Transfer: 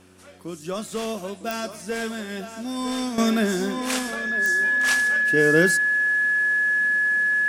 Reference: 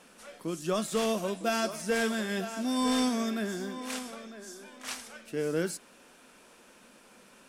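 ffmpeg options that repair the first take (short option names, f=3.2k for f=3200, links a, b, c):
-af "adeclick=t=4,bandreject=f=92:t=h:w=4,bandreject=f=184:t=h:w=4,bandreject=f=276:t=h:w=4,bandreject=f=368:t=h:w=4,bandreject=f=1.7k:w=30,asetnsamples=n=441:p=0,asendcmd='3.18 volume volume -11dB',volume=0dB"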